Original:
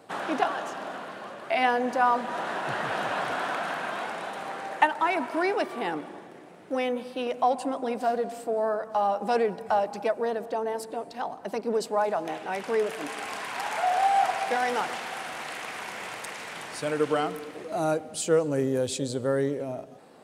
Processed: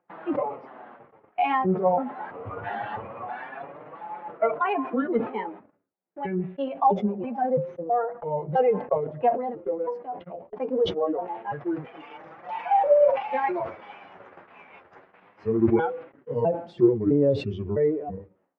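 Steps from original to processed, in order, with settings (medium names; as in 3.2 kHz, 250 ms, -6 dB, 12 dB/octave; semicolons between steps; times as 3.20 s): pitch shift switched off and on -6.5 st, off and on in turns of 358 ms; dynamic bell 1.6 kHz, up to -7 dB, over -45 dBFS, Q 1.5; flange 0.22 Hz, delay 6 ms, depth 7 ms, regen +11%; gate -42 dBFS, range -48 dB; upward compressor, threshold -50 dBFS; spectral noise reduction 11 dB; speed mistake 44.1 kHz file played as 48 kHz; low-pass 2.2 kHz 24 dB/octave; decay stretcher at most 130 dB/s; trim +7 dB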